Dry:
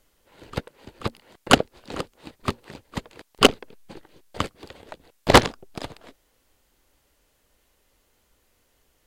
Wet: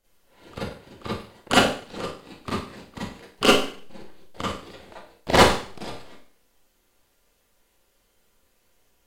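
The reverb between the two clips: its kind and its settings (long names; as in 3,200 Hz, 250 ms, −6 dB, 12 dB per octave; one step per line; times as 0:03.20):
four-comb reverb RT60 0.47 s, combs from 32 ms, DRR −9.5 dB
level −10 dB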